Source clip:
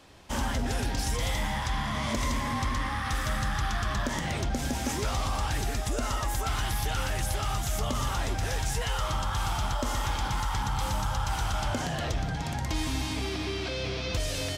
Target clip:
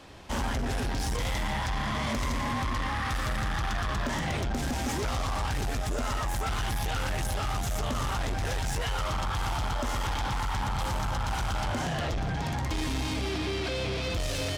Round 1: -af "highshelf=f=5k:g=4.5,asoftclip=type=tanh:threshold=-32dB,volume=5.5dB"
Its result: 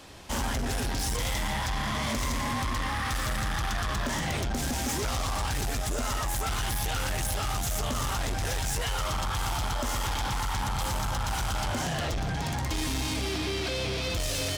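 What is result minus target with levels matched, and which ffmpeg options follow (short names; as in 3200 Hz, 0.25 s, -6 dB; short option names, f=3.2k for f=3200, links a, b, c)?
8000 Hz band +5.0 dB
-af "highshelf=f=5k:g=-5.5,asoftclip=type=tanh:threshold=-32dB,volume=5.5dB"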